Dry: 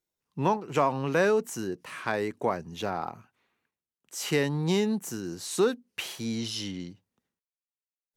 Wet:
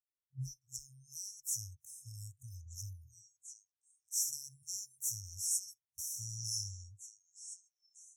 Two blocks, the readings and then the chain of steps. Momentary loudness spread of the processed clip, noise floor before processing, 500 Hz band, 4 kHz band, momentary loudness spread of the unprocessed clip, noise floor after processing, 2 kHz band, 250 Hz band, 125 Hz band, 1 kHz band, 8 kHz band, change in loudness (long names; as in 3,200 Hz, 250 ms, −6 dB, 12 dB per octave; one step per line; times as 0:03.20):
19 LU, below −85 dBFS, below −40 dB, −9.5 dB, 11 LU, below −85 dBFS, below −40 dB, below −30 dB, −12.0 dB, below −40 dB, +3.5 dB, −10.5 dB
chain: echo through a band-pass that steps 656 ms, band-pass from 890 Hz, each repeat 1.4 octaves, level −7 dB
noise reduction from a noise print of the clip's start 21 dB
brick-wall band-stop 130–5,300 Hz
level +3.5 dB